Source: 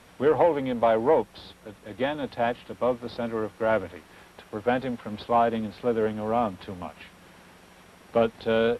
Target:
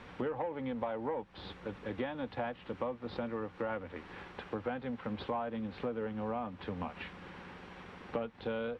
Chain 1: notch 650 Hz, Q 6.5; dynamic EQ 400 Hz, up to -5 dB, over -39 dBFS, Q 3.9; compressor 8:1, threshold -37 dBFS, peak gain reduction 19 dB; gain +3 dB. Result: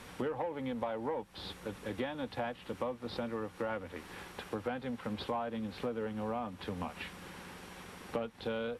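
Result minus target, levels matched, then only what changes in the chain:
4000 Hz band +4.5 dB
add after dynamic EQ: LPF 3000 Hz 12 dB/oct

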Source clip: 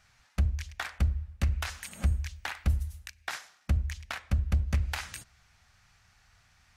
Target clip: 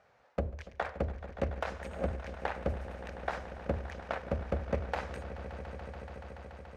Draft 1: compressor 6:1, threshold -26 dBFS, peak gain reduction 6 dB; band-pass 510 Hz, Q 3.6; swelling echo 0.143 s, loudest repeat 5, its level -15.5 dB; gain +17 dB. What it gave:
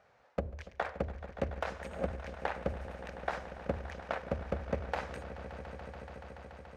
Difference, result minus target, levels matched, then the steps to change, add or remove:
compressor: peak gain reduction +6 dB
remove: compressor 6:1, threshold -26 dBFS, peak gain reduction 6 dB

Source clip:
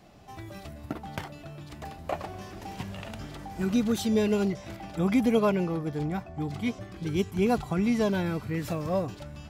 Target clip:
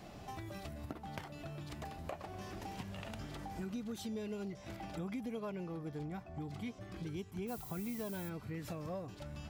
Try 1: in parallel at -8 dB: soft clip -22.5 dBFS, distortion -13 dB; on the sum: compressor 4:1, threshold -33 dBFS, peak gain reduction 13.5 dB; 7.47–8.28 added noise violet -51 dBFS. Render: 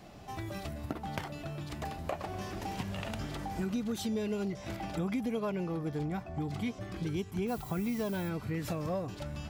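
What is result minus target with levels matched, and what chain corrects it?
compressor: peak gain reduction -8 dB
in parallel at -8 dB: soft clip -22.5 dBFS, distortion -13 dB; on the sum: compressor 4:1, threshold -43.5 dBFS, peak gain reduction 21.5 dB; 7.47–8.28 added noise violet -51 dBFS

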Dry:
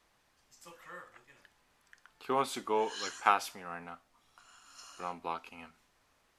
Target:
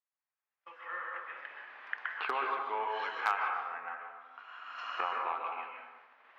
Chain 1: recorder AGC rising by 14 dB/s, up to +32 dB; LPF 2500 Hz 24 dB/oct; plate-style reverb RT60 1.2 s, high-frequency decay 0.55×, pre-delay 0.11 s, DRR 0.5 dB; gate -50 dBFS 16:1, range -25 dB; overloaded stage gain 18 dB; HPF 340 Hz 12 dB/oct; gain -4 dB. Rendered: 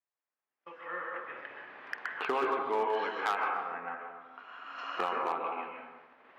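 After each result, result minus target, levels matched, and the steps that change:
250 Hz band +10.5 dB; overloaded stage: distortion +11 dB
change: HPF 850 Hz 12 dB/oct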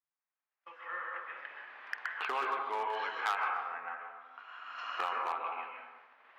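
overloaded stage: distortion +11 dB
change: overloaded stage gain 12 dB

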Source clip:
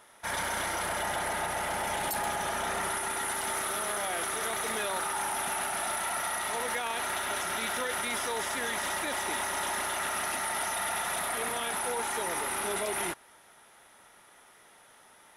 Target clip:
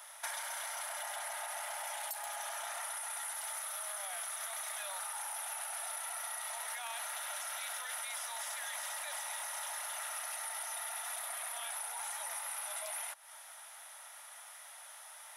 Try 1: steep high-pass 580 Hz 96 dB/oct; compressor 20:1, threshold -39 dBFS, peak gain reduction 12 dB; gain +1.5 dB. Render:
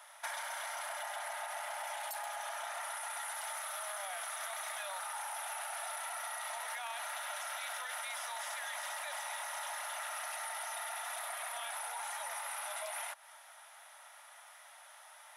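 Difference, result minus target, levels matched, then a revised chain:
8000 Hz band -3.0 dB
steep high-pass 580 Hz 96 dB/oct; high shelf 4500 Hz +9 dB; compressor 20:1, threshold -39 dBFS, peak gain reduction 17.5 dB; gain +1.5 dB

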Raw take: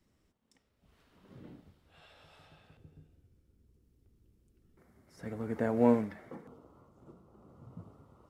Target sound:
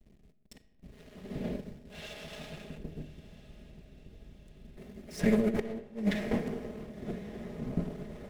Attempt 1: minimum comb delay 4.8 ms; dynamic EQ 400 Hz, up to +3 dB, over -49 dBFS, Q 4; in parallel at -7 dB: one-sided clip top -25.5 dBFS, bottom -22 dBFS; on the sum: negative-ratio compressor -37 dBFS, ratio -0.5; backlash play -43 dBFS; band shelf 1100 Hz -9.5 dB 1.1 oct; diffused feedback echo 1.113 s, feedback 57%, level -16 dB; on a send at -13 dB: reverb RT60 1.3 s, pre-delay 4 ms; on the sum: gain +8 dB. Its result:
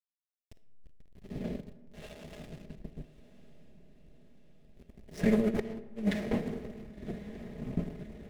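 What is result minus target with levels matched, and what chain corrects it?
backlash: distortion +9 dB
minimum comb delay 4.8 ms; dynamic EQ 400 Hz, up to +3 dB, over -49 dBFS, Q 4; in parallel at -7 dB: one-sided clip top -25.5 dBFS, bottom -22 dBFS; on the sum: negative-ratio compressor -37 dBFS, ratio -0.5; backlash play -54.5 dBFS; band shelf 1100 Hz -9.5 dB 1.1 oct; diffused feedback echo 1.113 s, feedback 57%, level -16 dB; on a send at -13 dB: reverb RT60 1.3 s, pre-delay 4 ms; on the sum: gain +8 dB

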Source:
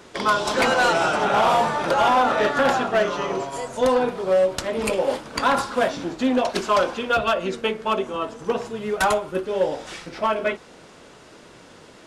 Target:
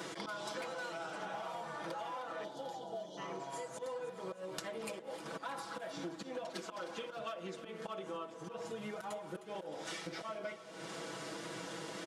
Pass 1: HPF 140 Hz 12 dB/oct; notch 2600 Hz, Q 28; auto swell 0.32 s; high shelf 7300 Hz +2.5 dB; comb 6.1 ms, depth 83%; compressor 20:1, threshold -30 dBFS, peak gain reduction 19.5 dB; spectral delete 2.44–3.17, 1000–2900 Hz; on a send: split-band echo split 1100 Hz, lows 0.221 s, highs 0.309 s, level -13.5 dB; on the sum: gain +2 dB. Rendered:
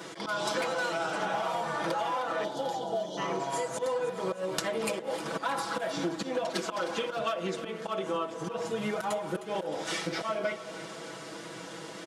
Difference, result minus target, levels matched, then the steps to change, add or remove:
compressor: peak gain reduction -11.5 dB
change: compressor 20:1, threshold -42 dBFS, peak gain reduction 31 dB

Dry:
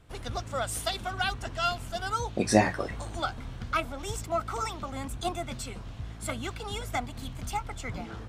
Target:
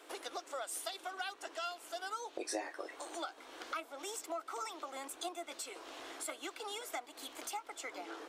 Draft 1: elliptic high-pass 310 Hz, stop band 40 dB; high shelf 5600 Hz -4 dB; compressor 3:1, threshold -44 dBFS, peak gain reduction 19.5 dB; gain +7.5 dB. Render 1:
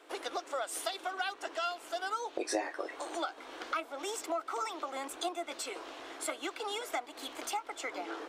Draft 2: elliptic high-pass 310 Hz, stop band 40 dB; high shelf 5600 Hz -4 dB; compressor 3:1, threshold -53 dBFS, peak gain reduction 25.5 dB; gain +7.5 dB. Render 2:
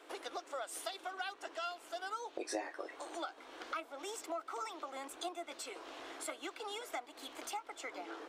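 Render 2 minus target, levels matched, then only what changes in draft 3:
8000 Hz band -3.0 dB
change: high shelf 5600 Hz +4.5 dB

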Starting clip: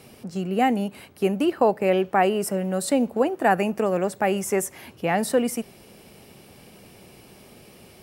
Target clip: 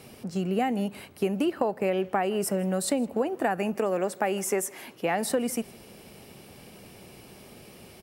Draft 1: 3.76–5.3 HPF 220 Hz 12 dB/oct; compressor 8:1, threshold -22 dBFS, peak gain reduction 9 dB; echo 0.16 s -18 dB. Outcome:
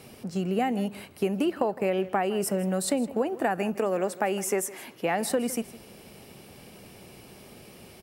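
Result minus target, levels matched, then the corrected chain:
echo-to-direct +6.5 dB
3.76–5.3 HPF 220 Hz 12 dB/oct; compressor 8:1, threshold -22 dBFS, peak gain reduction 9 dB; echo 0.16 s -24.5 dB

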